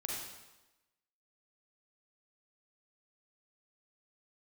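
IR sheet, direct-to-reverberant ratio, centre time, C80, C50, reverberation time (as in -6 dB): -3.0 dB, 73 ms, 2.5 dB, -1.0 dB, 1.0 s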